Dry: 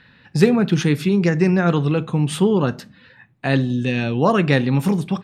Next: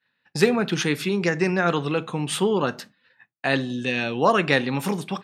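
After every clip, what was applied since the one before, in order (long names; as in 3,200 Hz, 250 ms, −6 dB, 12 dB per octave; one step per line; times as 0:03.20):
high-pass filter 580 Hz 6 dB per octave
downward expander −40 dBFS
level +1.5 dB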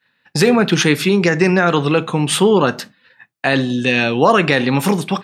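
boost into a limiter +10.5 dB
level −1 dB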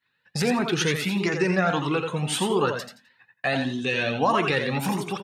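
on a send: repeating echo 86 ms, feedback 22%, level −6.5 dB
on the sum: flanger whose copies keep moving one way rising 1.6 Hz
level −5 dB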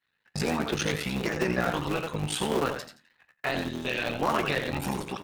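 sub-harmonics by changed cycles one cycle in 3, muted
tuned comb filter 74 Hz, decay 0.19 s, mix 50%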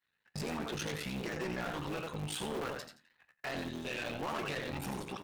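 soft clipping −27.5 dBFS, distortion −9 dB
level −5 dB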